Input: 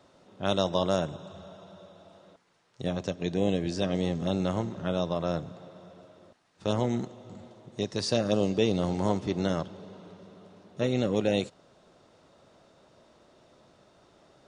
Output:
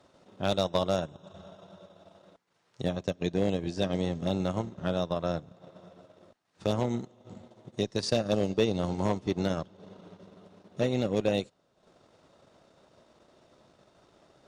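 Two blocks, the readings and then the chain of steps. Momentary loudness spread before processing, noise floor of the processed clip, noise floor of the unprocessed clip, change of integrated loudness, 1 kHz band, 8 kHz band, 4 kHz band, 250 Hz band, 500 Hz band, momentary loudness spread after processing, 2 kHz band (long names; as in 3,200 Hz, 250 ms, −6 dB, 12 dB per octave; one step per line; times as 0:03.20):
20 LU, −71 dBFS, −62 dBFS, −1.0 dB, −1.0 dB, −2.0 dB, −1.5 dB, −2.0 dB, −1.0 dB, 17 LU, −1.0 dB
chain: transient designer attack +4 dB, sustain −10 dB
asymmetric clip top −16.5 dBFS
level −1.5 dB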